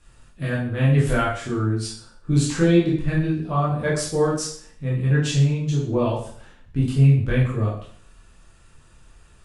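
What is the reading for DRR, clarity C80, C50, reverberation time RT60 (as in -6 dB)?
-7.0 dB, 8.0 dB, 4.0 dB, 0.55 s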